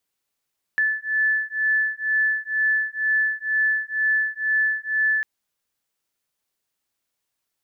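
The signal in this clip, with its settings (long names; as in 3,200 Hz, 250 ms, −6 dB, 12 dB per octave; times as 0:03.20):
two tones that beat 1,740 Hz, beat 2.1 Hz, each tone −22.5 dBFS 4.45 s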